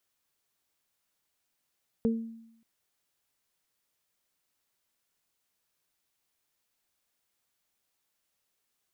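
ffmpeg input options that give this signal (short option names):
-f lavfi -i "aevalsrc='0.0794*pow(10,-3*t/0.81)*sin(2*PI*227*t)+0.0562*pow(10,-3*t/0.3)*sin(2*PI*454*t)':d=0.58:s=44100"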